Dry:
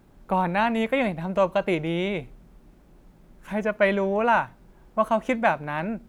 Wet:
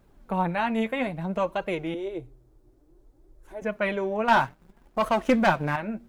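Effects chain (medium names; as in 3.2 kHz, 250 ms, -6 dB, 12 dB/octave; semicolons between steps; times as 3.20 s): 1.94–3.62 s: FFT filter 130 Hz 0 dB, 200 Hz -26 dB, 310 Hz +5 dB, 480 Hz -3 dB, 2.6 kHz -15 dB, 4.1 kHz -8 dB, 7.5 kHz -5 dB; 4.28–5.76 s: waveshaping leveller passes 2; flange 0.59 Hz, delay 1.5 ms, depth 8 ms, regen +37%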